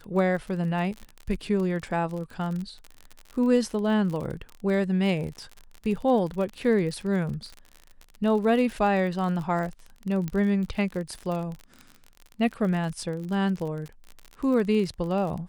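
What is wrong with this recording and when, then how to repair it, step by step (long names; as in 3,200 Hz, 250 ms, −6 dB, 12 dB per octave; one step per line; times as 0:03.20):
surface crackle 44 per second −32 dBFS
0:10.28: click −18 dBFS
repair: click removal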